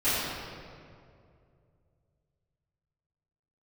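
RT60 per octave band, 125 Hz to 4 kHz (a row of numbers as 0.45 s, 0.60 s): 3.5 s, 2.6 s, 2.7 s, 2.1 s, 1.8 s, 1.4 s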